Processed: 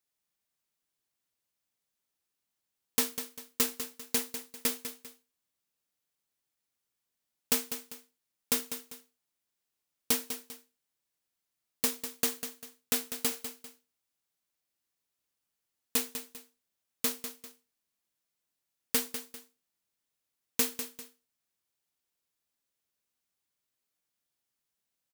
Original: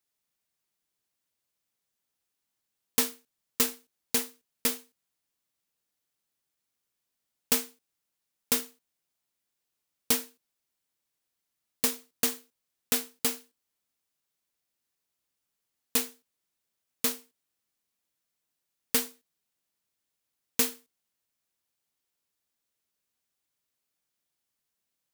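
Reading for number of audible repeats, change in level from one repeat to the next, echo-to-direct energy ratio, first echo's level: 2, −9.0 dB, −9.5 dB, −10.0 dB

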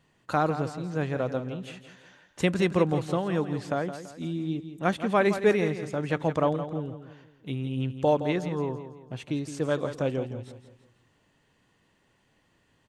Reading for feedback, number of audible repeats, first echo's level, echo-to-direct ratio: 40%, 4, −11.0 dB, −10.0 dB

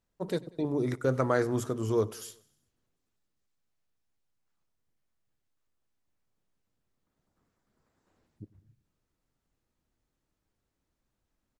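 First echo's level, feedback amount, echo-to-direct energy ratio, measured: −22.0 dB, 53%, −20.5 dB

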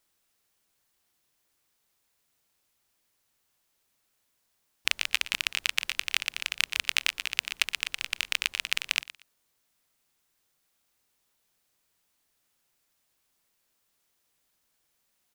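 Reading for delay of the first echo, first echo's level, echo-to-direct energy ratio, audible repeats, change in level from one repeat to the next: 118 ms, −16.5 dB, −16.5 dB, 2, −14.5 dB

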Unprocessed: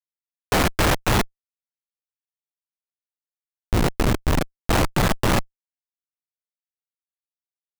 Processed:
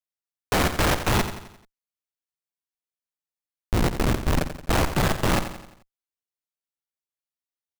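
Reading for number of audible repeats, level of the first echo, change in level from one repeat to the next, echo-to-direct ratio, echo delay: 4, −10.5 dB, −6.5 dB, −9.5 dB, 87 ms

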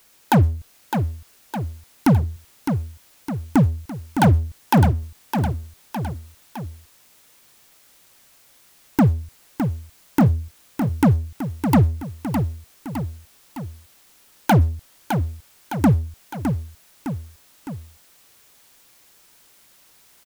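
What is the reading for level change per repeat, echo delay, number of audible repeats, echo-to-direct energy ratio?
−5.0 dB, 610 ms, 3, −5.5 dB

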